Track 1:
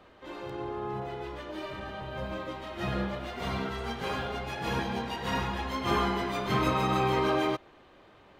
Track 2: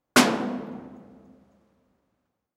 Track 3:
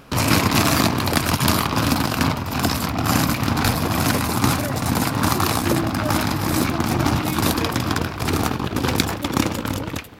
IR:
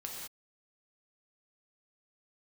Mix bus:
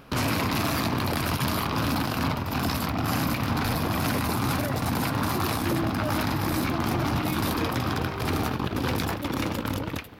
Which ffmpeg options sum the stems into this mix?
-filter_complex "[0:a]adelay=950,volume=-10.5dB[link_01];[1:a]volume=-10dB[link_02];[2:a]equalizer=frequency=7500:width_type=o:width=0.8:gain=-7,volume=-3.5dB[link_03];[link_01][link_02][link_03]amix=inputs=3:normalize=0,alimiter=limit=-17dB:level=0:latency=1:release=10"

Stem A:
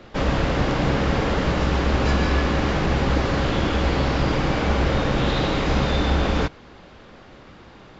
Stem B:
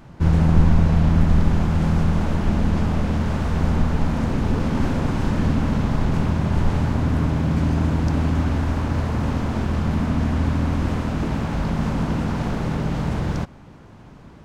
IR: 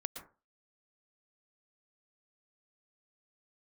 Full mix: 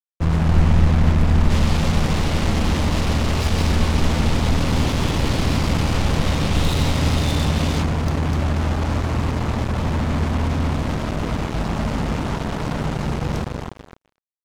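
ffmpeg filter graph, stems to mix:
-filter_complex "[0:a]highshelf=frequency=2100:gain=11.5,adelay=1350,volume=-8.5dB[link_01];[1:a]volume=-2dB,asplit=2[link_02][link_03];[link_03]volume=-4dB,aecho=0:1:249|498|747|996|1245|1494|1743|1992|2241|2490:1|0.6|0.36|0.216|0.13|0.0778|0.0467|0.028|0.0168|0.0101[link_04];[link_01][link_02][link_04]amix=inputs=3:normalize=0,equalizer=frequency=1600:width=5:gain=-9,acrusher=bits=3:mix=0:aa=0.5"

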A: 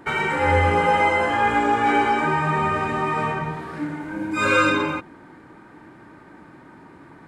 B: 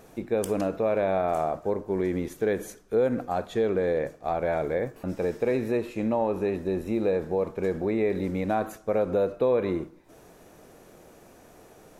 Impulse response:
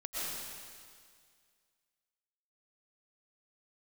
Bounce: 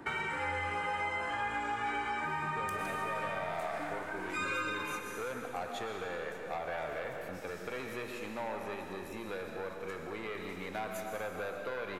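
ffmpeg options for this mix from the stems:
-filter_complex "[0:a]volume=-4dB,asplit=2[link_01][link_02];[link_02]volume=-16.5dB[link_03];[1:a]asoftclip=type=tanh:threshold=-20.5dB,adelay=2250,volume=-3.5dB,asplit=2[link_04][link_05];[link_05]volume=-4dB[link_06];[2:a]atrim=start_sample=2205[link_07];[link_03][link_06]amix=inputs=2:normalize=0[link_08];[link_08][link_07]afir=irnorm=-1:irlink=0[link_09];[link_01][link_04][link_09]amix=inputs=3:normalize=0,acrossover=split=93|890[link_10][link_11][link_12];[link_10]acompressor=threshold=-56dB:ratio=4[link_13];[link_11]acompressor=threshold=-46dB:ratio=4[link_14];[link_12]acompressor=threshold=-36dB:ratio=4[link_15];[link_13][link_14][link_15]amix=inputs=3:normalize=0"

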